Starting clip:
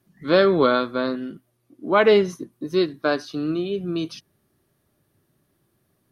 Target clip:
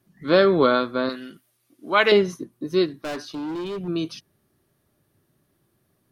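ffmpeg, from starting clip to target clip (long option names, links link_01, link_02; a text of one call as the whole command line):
ffmpeg -i in.wav -filter_complex "[0:a]asettb=1/sr,asplit=3[link_01][link_02][link_03];[link_01]atrim=end=1.094[link_04];[link_02]atrim=start=1.09:end=2.12,asetpts=PTS-STARTPTS,afade=type=in:duration=0.004:curve=qsin,afade=type=out:start_time=1.026:duration=0.004:curve=qsin,tiltshelf=frequency=1100:gain=-8.5[link_05];[link_03]atrim=start=2.116[link_06];[link_04][link_05]acrossfade=duration=0.004:curve1=hsin:curve2=qsin[link_07];[link_07][link_06]acrossfade=duration=0.004:curve1=qsin:curve2=hsin,asettb=1/sr,asplit=3[link_08][link_09][link_10];[link_08]atrim=end=3.034[link_11];[link_09]atrim=start=3.03:end=3.88,asetpts=PTS-STARTPTS,afade=type=in:duration=0.004:curve=qsin,afade=type=out:start_time=0.846:duration=0.004:curve=qsin,volume=27.5dB,asoftclip=hard,volume=-27.5dB[link_12];[link_10]atrim=start=3.876[link_13];[link_11][link_12]acrossfade=duration=0.004:curve1=hsin:curve2=qsin[link_14];[link_14][link_13]acrossfade=duration=0.004:curve1=qsin:curve2=hsin" out.wav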